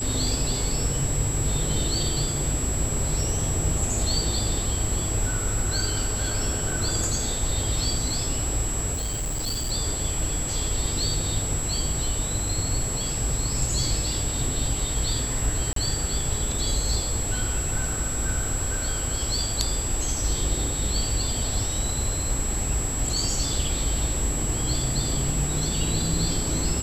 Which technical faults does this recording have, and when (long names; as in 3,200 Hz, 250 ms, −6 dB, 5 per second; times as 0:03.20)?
whistle 7,700 Hz −29 dBFS
0:08.93–0:09.72: clipping −24.5 dBFS
0:15.73–0:15.76: drop-out 33 ms